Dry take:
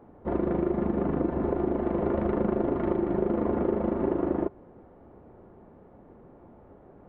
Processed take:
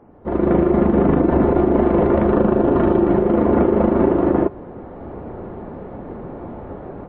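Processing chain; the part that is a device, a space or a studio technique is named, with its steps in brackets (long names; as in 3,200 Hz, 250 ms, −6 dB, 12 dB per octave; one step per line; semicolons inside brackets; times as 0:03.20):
0:02.29–0:03.09: notch filter 2,100 Hz, Q 7.5
low-bitrate web radio (automatic gain control gain up to 16 dB; brickwall limiter −10 dBFS, peak gain reduction 8 dB; level +4 dB; MP3 24 kbit/s 22,050 Hz)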